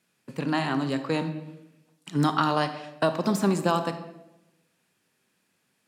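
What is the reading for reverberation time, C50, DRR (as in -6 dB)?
0.95 s, 10.5 dB, 9.0 dB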